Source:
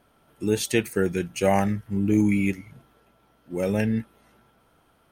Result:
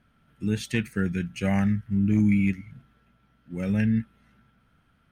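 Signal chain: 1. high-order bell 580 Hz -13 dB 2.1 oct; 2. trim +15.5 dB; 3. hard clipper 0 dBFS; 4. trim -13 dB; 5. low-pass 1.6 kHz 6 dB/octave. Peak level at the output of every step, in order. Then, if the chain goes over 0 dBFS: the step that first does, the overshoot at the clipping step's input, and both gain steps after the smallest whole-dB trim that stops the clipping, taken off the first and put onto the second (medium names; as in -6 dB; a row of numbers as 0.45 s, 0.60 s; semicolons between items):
-11.5 dBFS, +4.0 dBFS, 0.0 dBFS, -13.0 dBFS, -13.0 dBFS; step 2, 4.0 dB; step 2 +11.5 dB, step 4 -9 dB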